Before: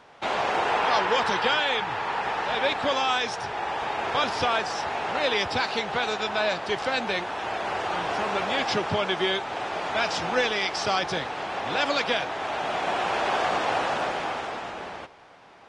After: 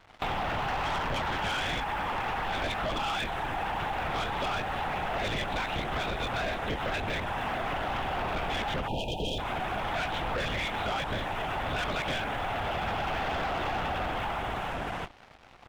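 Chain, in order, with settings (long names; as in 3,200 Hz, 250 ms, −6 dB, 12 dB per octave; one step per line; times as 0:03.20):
linear-prediction vocoder at 8 kHz whisper
leveller curve on the samples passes 3
downward compressor, threshold −23 dBFS, peak gain reduction 8.5 dB
time-frequency box erased 0:08.88–0:09.39, 960–2,400 Hz
level −6.5 dB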